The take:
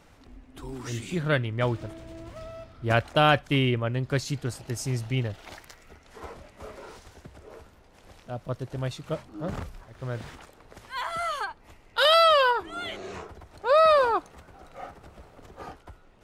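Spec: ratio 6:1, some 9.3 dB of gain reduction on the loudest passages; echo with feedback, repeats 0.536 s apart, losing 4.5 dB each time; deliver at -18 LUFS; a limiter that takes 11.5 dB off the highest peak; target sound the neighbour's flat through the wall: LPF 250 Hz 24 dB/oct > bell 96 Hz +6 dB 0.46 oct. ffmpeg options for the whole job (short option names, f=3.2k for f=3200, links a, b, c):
-af "acompressor=threshold=-25dB:ratio=6,alimiter=limit=-23.5dB:level=0:latency=1,lowpass=f=250:w=0.5412,lowpass=f=250:w=1.3066,equalizer=f=96:t=o:w=0.46:g=6,aecho=1:1:536|1072|1608|2144|2680|3216|3752|4288|4824:0.596|0.357|0.214|0.129|0.0772|0.0463|0.0278|0.0167|0.01,volume=19.5dB"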